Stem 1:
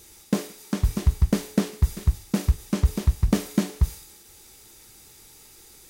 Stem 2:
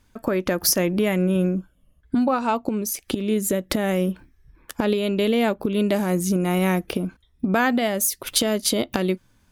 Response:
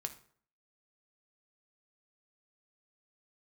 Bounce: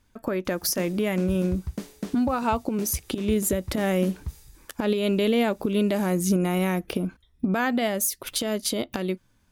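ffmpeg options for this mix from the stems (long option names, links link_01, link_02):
-filter_complex "[0:a]highpass=55,adelay=450,volume=-11dB[link_01];[1:a]dynaudnorm=framelen=330:gausssize=13:maxgain=11.5dB,volume=-4.5dB[link_02];[link_01][link_02]amix=inputs=2:normalize=0,alimiter=limit=-13.5dB:level=0:latency=1:release=173"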